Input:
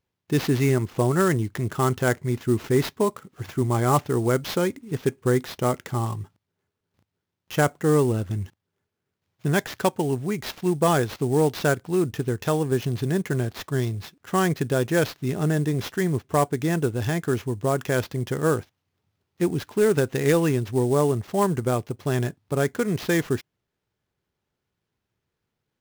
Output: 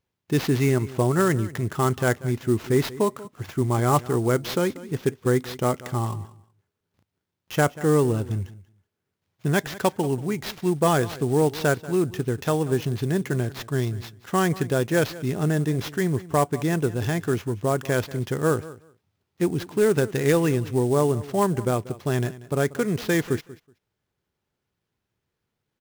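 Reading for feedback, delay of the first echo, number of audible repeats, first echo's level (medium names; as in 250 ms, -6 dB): 16%, 187 ms, 2, -18.0 dB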